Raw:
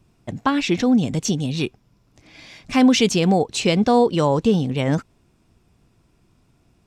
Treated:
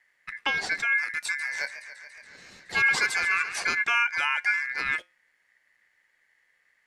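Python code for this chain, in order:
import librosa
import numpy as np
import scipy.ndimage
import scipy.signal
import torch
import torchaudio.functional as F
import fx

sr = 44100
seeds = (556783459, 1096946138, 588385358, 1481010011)

y = fx.comb_fb(x, sr, f0_hz=92.0, decay_s=0.26, harmonics='odd', damping=0.0, mix_pct=40)
y = y * np.sin(2.0 * np.pi * 1900.0 * np.arange(len(y)) / sr)
y = fx.echo_warbled(y, sr, ms=141, feedback_pct=77, rate_hz=2.8, cents=123, wet_db=-13.5, at=(1.24, 3.64))
y = y * 10.0 ** (-2.0 / 20.0)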